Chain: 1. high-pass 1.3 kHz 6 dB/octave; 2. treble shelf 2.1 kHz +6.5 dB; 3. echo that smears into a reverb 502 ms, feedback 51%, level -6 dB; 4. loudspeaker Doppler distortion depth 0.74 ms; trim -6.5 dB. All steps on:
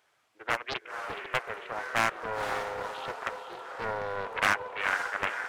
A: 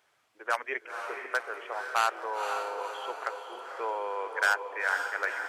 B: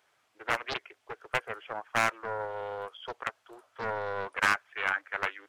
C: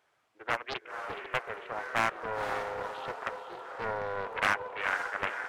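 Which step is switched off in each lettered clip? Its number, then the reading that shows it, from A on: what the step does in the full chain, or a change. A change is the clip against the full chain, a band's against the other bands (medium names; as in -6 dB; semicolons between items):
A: 4, 250 Hz band -7.5 dB; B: 3, momentary loudness spread change +3 LU; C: 2, 8 kHz band -4.5 dB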